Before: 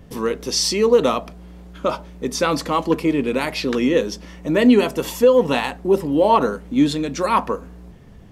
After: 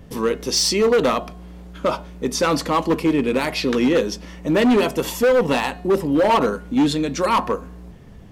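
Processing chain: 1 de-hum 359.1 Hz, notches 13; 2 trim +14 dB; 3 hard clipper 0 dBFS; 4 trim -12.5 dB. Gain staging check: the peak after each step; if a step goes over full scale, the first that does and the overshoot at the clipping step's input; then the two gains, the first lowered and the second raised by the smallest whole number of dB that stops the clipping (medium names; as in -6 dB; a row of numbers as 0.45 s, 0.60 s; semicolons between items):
-5.0 dBFS, +9.0 dBFS, 0.0 dBFS, -12.5 dBFS; step 2, 9.0 dB; step 2 +5 dB, step 4 -3.5 dB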